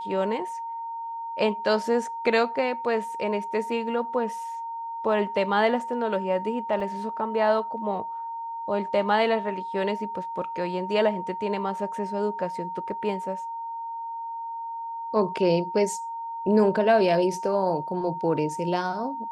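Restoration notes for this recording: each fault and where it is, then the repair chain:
tone 920 Hz -31 dBFS
6.8 gap 2.7 ms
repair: notch 920 Hz, Q 30; interpolate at 6.8, 2.7 ms

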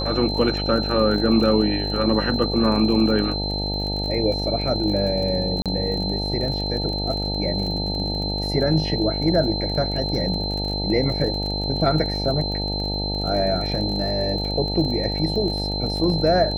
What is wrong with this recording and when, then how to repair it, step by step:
buzz 50 Hz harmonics 18 -27 dBFS
crackle 37/s -29 dBFS
tone 4100 Hz -27 dBFS
5.62–5.66 gap 37 ms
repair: de-click; notch 4100 Hz, Q 30; de-hum 50 Hz, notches 18; interpolate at 5.62, 37 ms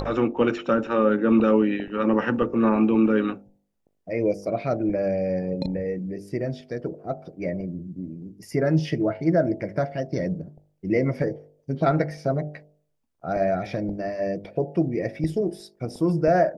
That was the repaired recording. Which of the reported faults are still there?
none

